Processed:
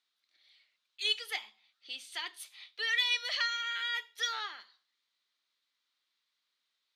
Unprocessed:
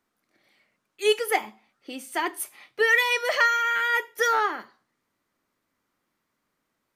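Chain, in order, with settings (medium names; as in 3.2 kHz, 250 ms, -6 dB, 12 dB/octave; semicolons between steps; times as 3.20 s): in parallel at -1 dB: compression, threshold -36 dBFS, peak gain reduction 18.5 dB; on the sum: band-pass filter 3.8 kHz, Q 3.8; trim +3 dB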